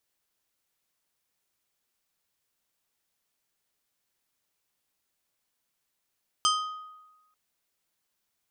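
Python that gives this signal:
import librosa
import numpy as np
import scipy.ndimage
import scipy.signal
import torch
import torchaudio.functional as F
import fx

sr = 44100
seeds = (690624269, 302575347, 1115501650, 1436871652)

y = fx.strike_glass(sr, length_s=0.89, level_db=-21.5, body='plate', hz=1250.0, decay_s=1.13, tilt_db=2, modes=5)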